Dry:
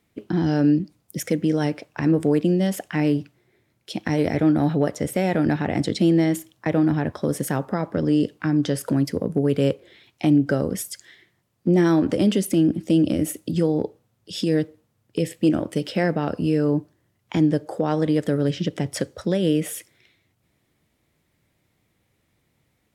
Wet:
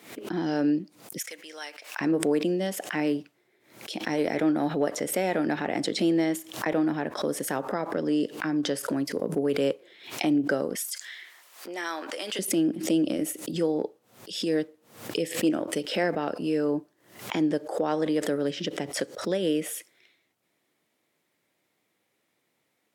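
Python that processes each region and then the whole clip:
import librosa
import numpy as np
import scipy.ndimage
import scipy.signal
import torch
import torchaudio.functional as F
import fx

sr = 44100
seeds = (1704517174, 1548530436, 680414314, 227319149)

y = fx.chain(x, sr, fx.bessel_highpass(hz=1600.0, order=2),
    fx.quant_companded(bits=8), at=(1.18, 2.01))
y = fx.chain(y, sr, fx.highpass(hz=1000.0, slope=12),
    fx.env_flatten(amount_pct=50), at=(10.75, 12.39))
y = scipy.signal.sosfilt(scipy.signal.butter(2, 310.0, 'highpass', fs=sr, output='sos'), y)
y = fx.pre_swell(y, sr, db_per_s=110.0)
y = y * 10.0 ** (-2.5 / 20.0)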